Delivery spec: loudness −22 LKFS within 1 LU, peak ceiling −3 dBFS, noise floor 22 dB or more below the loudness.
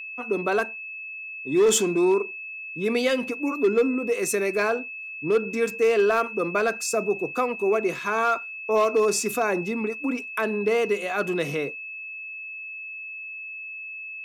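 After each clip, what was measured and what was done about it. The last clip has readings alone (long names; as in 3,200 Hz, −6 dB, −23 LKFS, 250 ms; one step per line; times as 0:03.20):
share of clipped samples 0.6%; peaks flattened at −14.0 dBFS; interfering tone 2,600 Hz; level of the tone −34 dBFS; integrated loudness −25.0 LKFS; sample peak −14.0 dBFS; target loudness −22.0 LKFS
→ clipped peaks rebuilt −14 dBFS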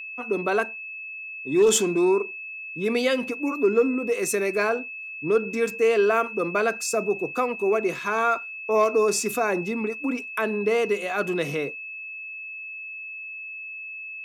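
share of clipped samples 0.0%; interfering tone 2,600 Hz; level of the tone −34 dBFS
→ notch filter 2,600 Hz, Q 30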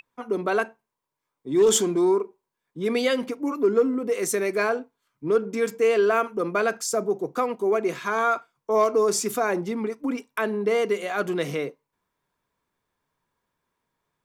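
interfering tone none found; integrated loudness −24.5 LKFS; sample peak −8.0 dBFS; target loudness −22.0 LKFS
→ level +2.5 dB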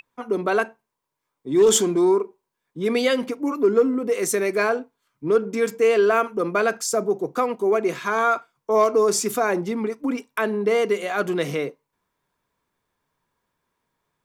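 integrated loudness −22.0 LKFS; sample peak −5.5 dBFS; background noise floor −81 dBFS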